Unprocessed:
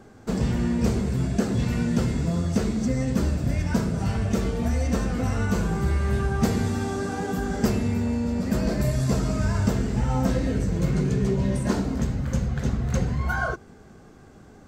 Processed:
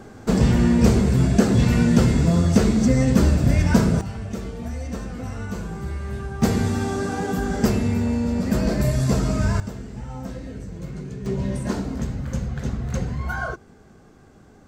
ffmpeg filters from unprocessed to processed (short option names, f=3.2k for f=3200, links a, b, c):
-af "asetnsamples=n=441:p=0,asendcmd='4.01 volume volume -6dB;6.42 volume volume 3dB;9.6 volume volume -10dB;11.26 volume volume -1.5dB',volume=7dB"